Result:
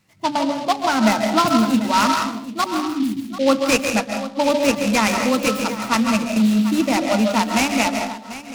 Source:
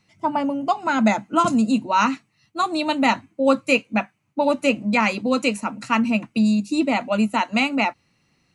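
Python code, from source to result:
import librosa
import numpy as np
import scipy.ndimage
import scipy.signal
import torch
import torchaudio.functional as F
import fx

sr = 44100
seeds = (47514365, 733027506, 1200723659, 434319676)

p1 = fx.brickwall_bandstop(x, sr, low_hz=410.0, high_hz=4500.0, at=(2.64, 3.26))
p2 = p1 + fx.echo_single(p1, sr, ms=741, db=-14.5, dry=0)
p3 = fx.rev_freeverb(p2, sr, rt60_s=0.62, hf_ratio=0.45, predelay_ms=105, drr_db=4.0)
p4 = fx.noise_mod_delay(p3, sr, seeds[0], noise_hz=3200.0, depth_ms=0.049)
y = p4 * 10.0 ** (1.0 / 20.0)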